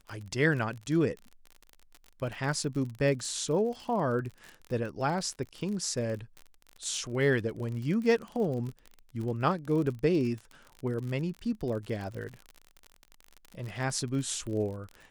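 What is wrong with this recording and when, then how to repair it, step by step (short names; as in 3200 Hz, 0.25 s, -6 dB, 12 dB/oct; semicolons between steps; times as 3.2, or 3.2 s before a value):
crackle 46/s -36 dBFS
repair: de-click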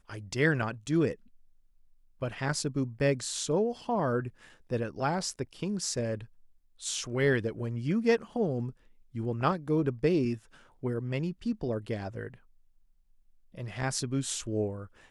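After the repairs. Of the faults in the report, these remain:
none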